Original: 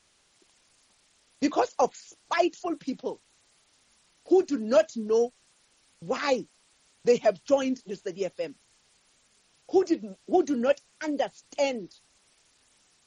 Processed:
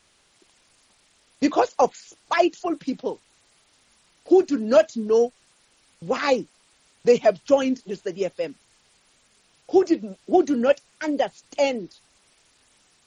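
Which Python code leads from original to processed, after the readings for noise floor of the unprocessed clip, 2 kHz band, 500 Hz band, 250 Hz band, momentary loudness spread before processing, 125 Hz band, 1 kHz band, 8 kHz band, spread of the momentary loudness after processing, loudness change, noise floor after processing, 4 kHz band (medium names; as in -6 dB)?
-66 dBFS, +5.0 dB, +5.0 dB, +5.0 dB, 12 LU, +5.0 dB, +5.0 dB, no reading, 12 LU, +5.0 dB, -62 dBFS, +4.0 dB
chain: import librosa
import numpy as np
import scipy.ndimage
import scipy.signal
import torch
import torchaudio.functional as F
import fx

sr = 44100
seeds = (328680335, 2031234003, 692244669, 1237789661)

y = fx.peak_eq(x, sr, hz=6400.0, db=-3.0, octaves=1.0)
y = F.gain(torch.from_numpy(y), 5.0).numpy()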